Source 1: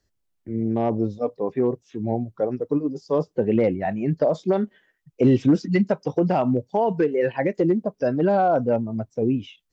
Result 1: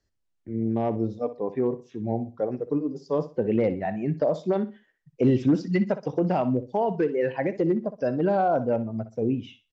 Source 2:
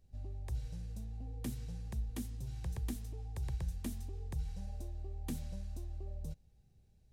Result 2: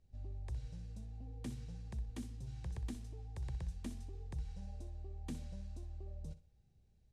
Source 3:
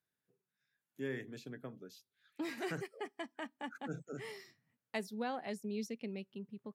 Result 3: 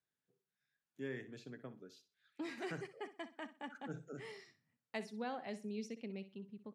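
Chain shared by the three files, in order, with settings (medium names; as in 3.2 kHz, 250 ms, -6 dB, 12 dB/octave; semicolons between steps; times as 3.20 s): Bessel low-pass 7.7 kHz, order 4; on a send: feedback delay 62 ms, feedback 26%, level -14 dB; on the sum: trim -3.5 dB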